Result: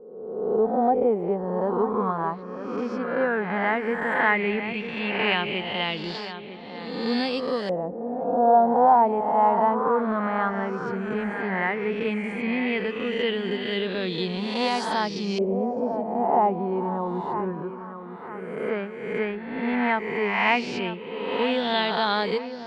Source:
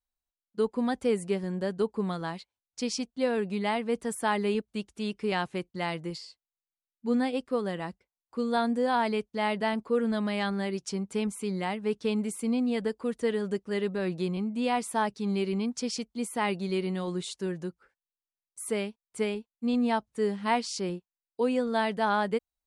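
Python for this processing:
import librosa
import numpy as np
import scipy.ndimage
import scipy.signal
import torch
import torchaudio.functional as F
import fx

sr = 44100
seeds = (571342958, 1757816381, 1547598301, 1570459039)

y = fx.spec_swells(x, sr, rise_s=1.23)
y = fx.echo_wet_lowpass(y, sr, ms=953, feedback_pct=47, hz=2700.0, wet_db=-10.5)
y = fx.filter_lfo_lowpass(y, sr, shape='saw_up', hz=0.13, low_hz=570.0, high_hz=5300.0, q=4.2)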